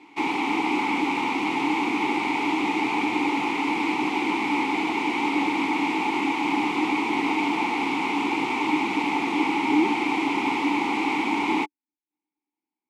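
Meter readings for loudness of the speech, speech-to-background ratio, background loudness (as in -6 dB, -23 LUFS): -27.0 LUFS, -3.0 dB, -24.0 LUFS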